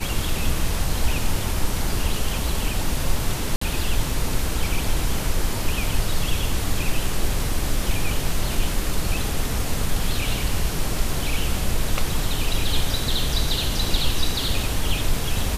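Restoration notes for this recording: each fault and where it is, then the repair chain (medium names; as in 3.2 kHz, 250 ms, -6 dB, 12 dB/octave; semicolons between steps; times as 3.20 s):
3.56–3.61 s: dropout 54 ms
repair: interpolate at 3.56 s, 54 ms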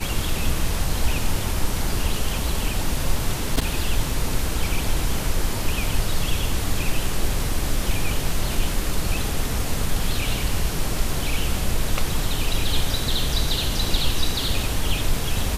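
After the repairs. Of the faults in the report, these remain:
nothing left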